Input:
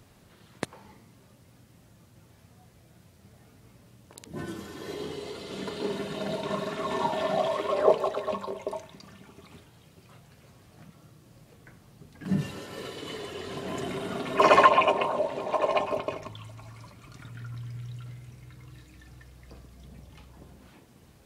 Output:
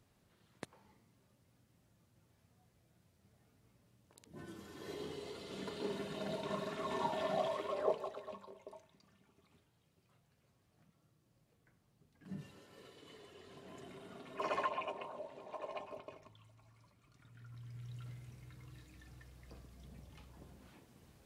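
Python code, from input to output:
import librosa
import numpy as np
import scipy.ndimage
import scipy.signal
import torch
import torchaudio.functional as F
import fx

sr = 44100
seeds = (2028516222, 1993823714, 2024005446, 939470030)

y = fx.gain(x, sr, db=fx.line((4.4, -15.0), (4.88, -9.0), (7.43, -9.0), (8.5, -19.5), (17.16, -19.5), (18.04, -7.0)))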